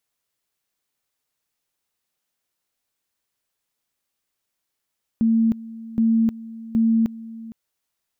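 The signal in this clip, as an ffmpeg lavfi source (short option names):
-f lavfi -i "aevalsrc='pow(10,(-14.5-18.5*gte(mod(t,0.77),0.31))/20)*sin(2*PI*226*t)':d=2.31:s=44100"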